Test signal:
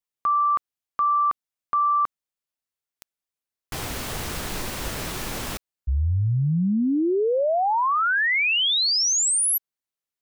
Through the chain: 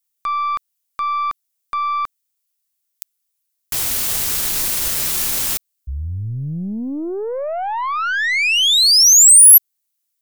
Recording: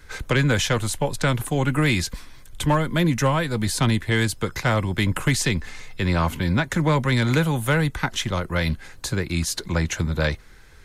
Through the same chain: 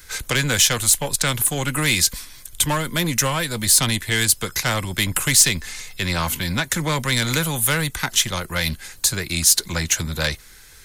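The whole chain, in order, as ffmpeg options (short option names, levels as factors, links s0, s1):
-af "aeval=exprs='0.355*(cos(1*acos(clip(val(0)/0.355,-1,1)))-cos(1*PI/2))+0.0178*(cos(5*acos(clip(val(0)/0.355,-1,1)))-cos(5*PI/2))+0.0158*(cos(6*acos(clip(val(0)/0.355,-1,1)))-cos(6*PI/2))':c=same,crystalizer=i=6:c=0,volume=0.596"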